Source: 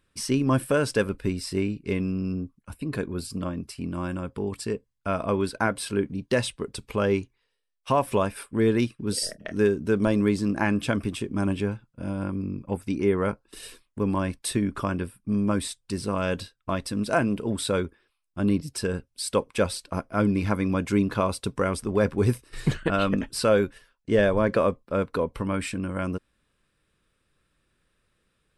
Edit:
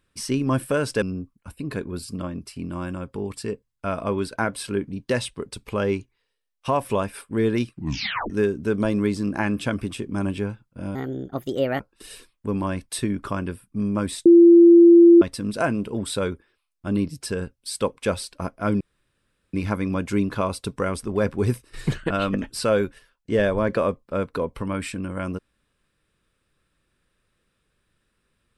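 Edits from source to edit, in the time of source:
0:01.02–0:02.24: remove
0:08.95: tape stop 0.57 s
0:12.17–0:13.32: play speed 136%
0:15.78–0:16.74: beep over 341 Hz −7 dBFS
0:20.33: splice in room tone 0.73 s

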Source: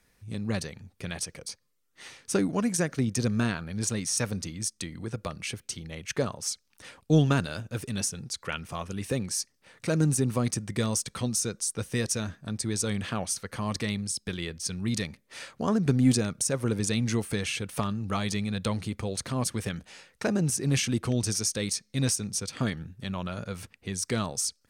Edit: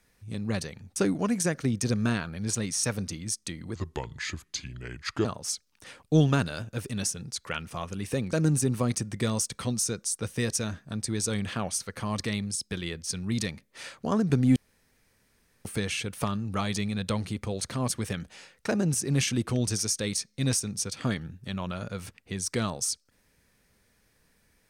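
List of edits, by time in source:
0:00.96–0:02.30: remove
0:05.09–0:06.23: play speed 76%
0:09.31–0:09.89: remove
0:16.12–0:17.21: fill with room tone

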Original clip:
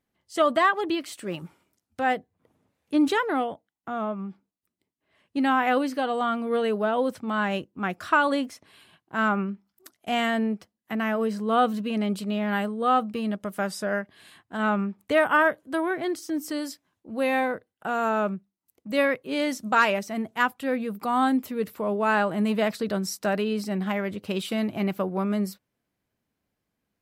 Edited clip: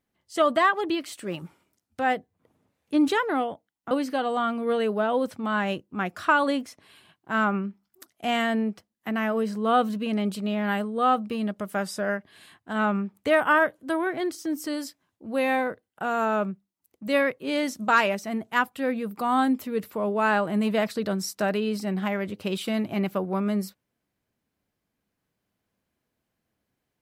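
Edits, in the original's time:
0:03.91–0:05.75: remove

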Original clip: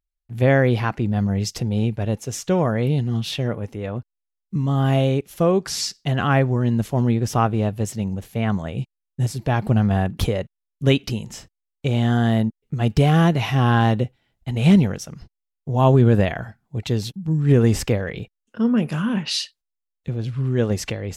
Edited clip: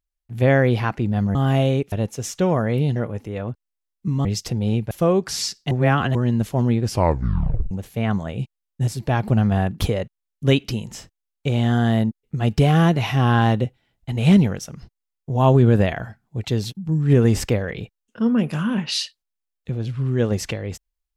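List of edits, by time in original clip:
0:01.35–0:02.01: swap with 0:04.73–0:05.30
0:03.05–0:03.44: remove
0:06.10–0:06.54: reverse
0:07.23: tape stop 0.87 s

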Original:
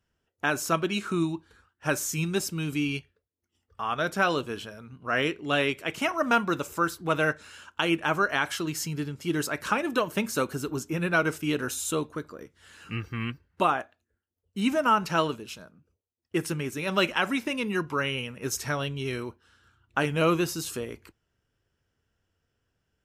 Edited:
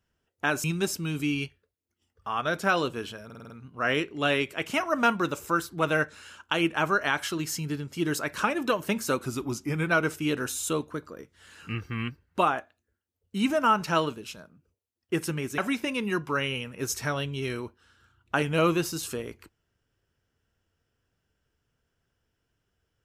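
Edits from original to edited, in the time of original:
0:00.64–0:02.17: remove
0:04.78: stutter 0.05 s, 6 plays
0:10.50–0:11.10: play speed 91%
0:16.80–0:17.21: remove

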